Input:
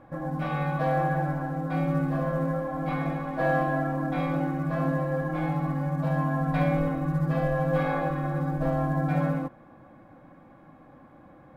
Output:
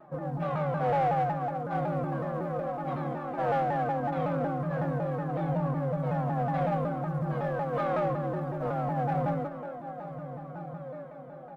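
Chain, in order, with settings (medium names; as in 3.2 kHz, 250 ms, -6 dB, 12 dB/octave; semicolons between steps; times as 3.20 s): high-pass 490 Hz 6 dB/octave; tilt shelf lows +8 dB, about 1.4 kHz; comb 5.2 ms, depth 76%; on a send: echo that smears into a reverb 1617 ms, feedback 42%, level -14.5 dB; on the sum: flange 0.19 Hz, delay 6.8 ms, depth 1.9 ms, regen +33%; feedback delay 891 ms, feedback 28%, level -14.5 dB; in parallel at -7.5 dB: one-sided clip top -35 dBFS; on the sum: wow and flutter 29 cents; saturation -16 dBFS, distortion -21 dB; vibrato with a chosen wave saw down 5.4 Hz, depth 160 cents; trim -3 dB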